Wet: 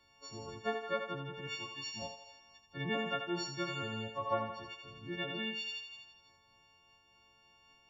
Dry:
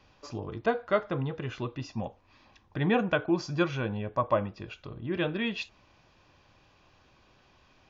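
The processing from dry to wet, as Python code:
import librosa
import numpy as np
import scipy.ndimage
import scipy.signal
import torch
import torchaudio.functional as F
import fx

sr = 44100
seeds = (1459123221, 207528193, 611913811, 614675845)

y = fx.freq_snap(x, sr, grid_st=4)
y = fx.tilt_shelf(y, sr, db=-7.0, hz=970.0, at=(1.47, 2.02))
y = fx.echo_thinned(y, sr, ms=82, feedback_pct=67, hz=490.0, wet_db=-4.0)
y = fx.am_noise(y, sr, seeds[0], hz=5.7, depth_pct=50)
y = y * librosa.db_to_amplitude(-8.5)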